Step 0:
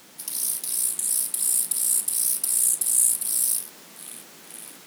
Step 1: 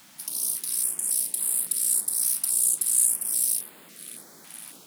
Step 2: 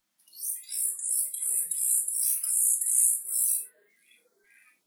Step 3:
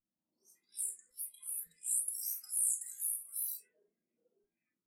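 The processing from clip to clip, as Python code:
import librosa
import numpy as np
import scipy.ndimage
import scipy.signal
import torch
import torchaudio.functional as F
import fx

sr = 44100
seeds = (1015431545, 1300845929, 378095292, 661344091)

y1 = fx.filter_held_notch(x, sr, hz=3.6, low_hz=430.0, high_hz=5800.0)
y1 = F.gain(torch.from_numpy(y1), -1.5).numpy()
y2 = fx.noise_reduce_blind(y1, sr, reduce_db=25)
y2 = fx.rev_gated(y2, sr, seeds[0], gate_ms=120, shape='falling', drr_db=3.0)
y2 = F.gain(torch.from_numpy(y2), -3.0).numpy()
y3 = fx.phaser_stages(y2, sr, stages=6, low_hz=460.0, high_hz=3200.0, hz=0.54, feedback_pct=40)
y3 = fx.env_lowpass(y3, sr, base_hz=560.0, full_db=-28.0)
y3 = F.gain(torch.from_numpy(y3), -7.0).numpy()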